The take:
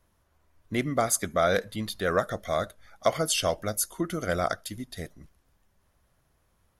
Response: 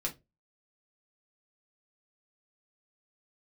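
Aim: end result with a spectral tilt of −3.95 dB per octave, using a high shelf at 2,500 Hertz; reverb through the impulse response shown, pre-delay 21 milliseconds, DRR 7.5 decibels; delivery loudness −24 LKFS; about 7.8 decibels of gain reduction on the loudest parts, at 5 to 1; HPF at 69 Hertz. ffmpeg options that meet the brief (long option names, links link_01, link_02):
-filter_complex "[0:a]highpass=69,highshelf=frequency=2500:gain=5,acompressor=threshold=-26dB:ratio=5,asplit=2[link_01][link_02];[1:a]atrim=start_sample=2205,adelay=21[link_03];[link_02][link_03]afir=irnorm=-1:irlink=0,volume=-10dB[link_04];[link_01][link_04]amix=inputs=2:normalize=0,volume=7dB"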